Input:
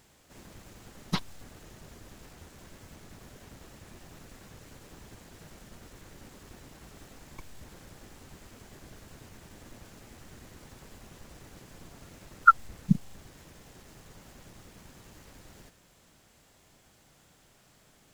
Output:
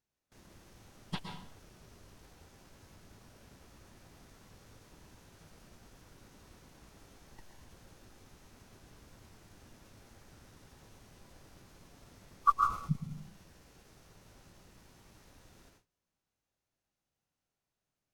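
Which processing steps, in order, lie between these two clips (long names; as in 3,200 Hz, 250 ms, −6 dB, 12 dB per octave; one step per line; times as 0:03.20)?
dense smooth reverb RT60 0.65 s, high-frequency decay 0.8×, pre-delay 105 ms, DRR 3 dB
noise gate with hold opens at −42 dBFS
formants moved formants −3 semitones
level −8.5 dB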